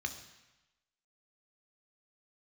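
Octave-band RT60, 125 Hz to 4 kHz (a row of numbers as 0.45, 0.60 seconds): 1.0, 0.95, 0.95, 1.1, 1.1, 1.0 seconds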